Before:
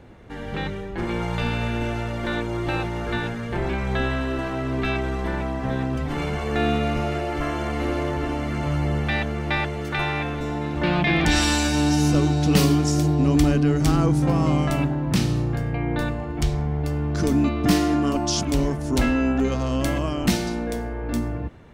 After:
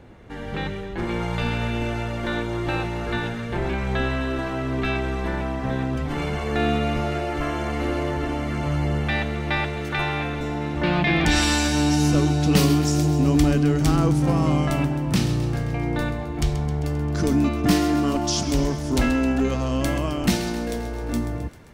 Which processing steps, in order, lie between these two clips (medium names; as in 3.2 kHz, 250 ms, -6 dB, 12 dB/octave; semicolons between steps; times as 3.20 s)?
feedback echo behind a high-pass 132 ms, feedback 68%, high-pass 1.7 kHz, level -12 dB